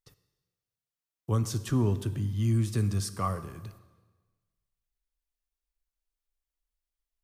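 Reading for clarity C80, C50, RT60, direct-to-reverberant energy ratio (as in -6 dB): 15.0 dB, 14.0 dB, 1.3 s, 11.5 dB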